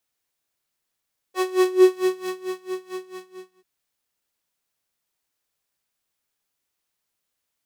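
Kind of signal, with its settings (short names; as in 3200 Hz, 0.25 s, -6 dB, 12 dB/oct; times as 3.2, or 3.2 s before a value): synth patch with tremolo F#4, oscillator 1 square, interval 0 st, detune 15 cents, oscillator 2 level -2 dB, sub -26 dB, filter highpass, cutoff 190 Hz, Q 4.3, filter envelope 1.5 oct, filter decay 0.79 s, filter sustain 25%, attack 79 ms, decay 1.18 s, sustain -13 dB, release 0.68 s, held 1.61 s, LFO 4.5 Hz, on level 21.5 dB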